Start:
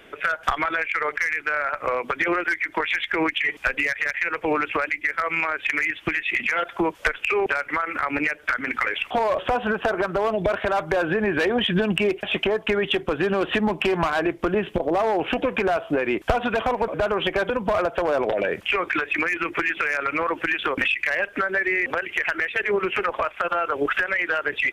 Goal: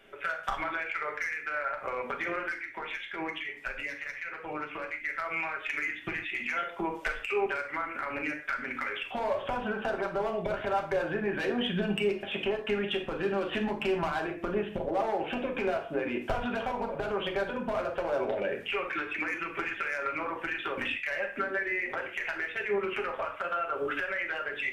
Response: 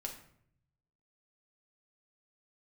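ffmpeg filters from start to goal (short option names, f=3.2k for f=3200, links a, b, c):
-filter_complex "[0:a]asettb=1/sr,asplit=3[a][b][c];[a]atrim=end=2.504[d];[b]atrim=start=2.5:end=4.93,asetpts=PTS-STARTPTS,afade=t=in:d=0.004:c=qsin,afade=t=out:st=2.426:d=0.004:c=qsin,flanger=delay=5.9:depth=2.2:regen=-47:speed=1.3:shape=sinusoidal[e];[c]atrim=start=4.926[f];[d][e]acrossfade=d=0.004:c1=hsin:c2=qsin[g];[g][f]acrossfade=d=0.004:c1=qsin:c2=hsin[h];[1:a]atrim=start_sample=2205,afade=t=out:st=0.21:d=0.01,atrim=end_sample=9702[i];[h][i]afir=irnorm=-1:irlink=0,volume=-7.5dB"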